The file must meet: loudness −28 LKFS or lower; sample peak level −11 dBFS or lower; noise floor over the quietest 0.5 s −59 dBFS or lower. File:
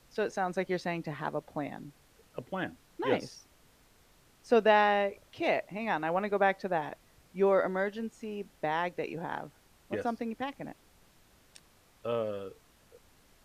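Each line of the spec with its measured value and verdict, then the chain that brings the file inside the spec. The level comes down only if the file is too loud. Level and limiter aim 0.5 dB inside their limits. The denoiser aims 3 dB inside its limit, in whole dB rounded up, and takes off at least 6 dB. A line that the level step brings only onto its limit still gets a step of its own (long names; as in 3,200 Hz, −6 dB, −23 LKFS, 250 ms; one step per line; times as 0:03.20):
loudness −32.0 LKFS: in spec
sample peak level −12.5 dBFS: in spec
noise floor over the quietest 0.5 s −63 dBFS: in spec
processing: no processing needed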